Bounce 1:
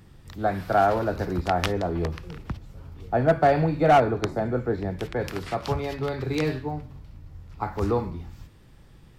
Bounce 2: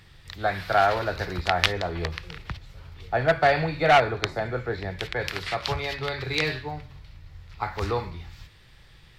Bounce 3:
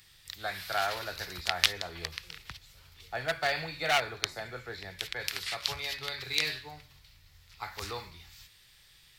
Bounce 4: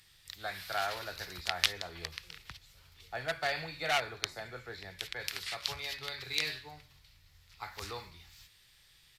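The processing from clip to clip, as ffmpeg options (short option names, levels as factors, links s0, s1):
-af "equalizer=f=250:t=o:w=1:g=-10,equalizer=f=2000:t=o:w=1:g=8,equalizer=f=4000:t=o:w=1:g=10,volume=0.891"
-af "crystalizer=i=10:c=0,volume=0.168"
-af "aresample=32000,aresample=44100,volume=0.668"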